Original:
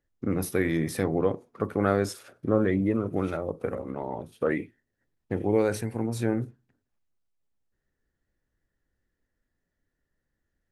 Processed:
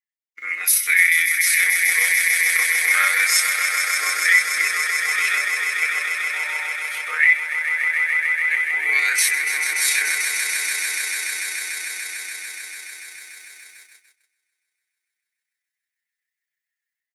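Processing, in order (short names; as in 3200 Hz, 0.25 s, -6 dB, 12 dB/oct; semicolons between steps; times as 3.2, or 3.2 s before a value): on a send: swelling echo 91 ms, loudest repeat 5, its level -9 dB; on the sum: granular stretch 1.6×, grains 64 ms; resonant high-pass 2100 Hz, resonance Q 5.6; tilt +4 dB/oct; AGC gain up to 7.5 dB; gate -50 dBFS, range -25 dB; comb 6.5 ms, depth 73%; in parallel at -2 dB: compressor, threshold -31 dBFS, peak gain reduction 19.5 dB; on the sum: gain -1 dB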